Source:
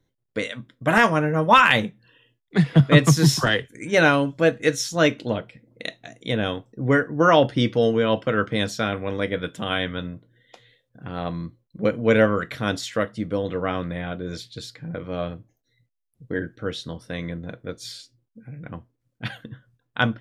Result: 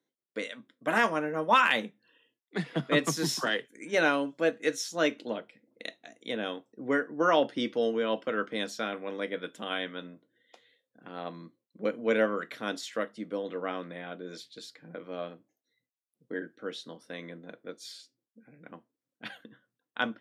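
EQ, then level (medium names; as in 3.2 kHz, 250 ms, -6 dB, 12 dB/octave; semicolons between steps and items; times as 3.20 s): high-pass 220 Hz 24 dB/octave; -8.0 dB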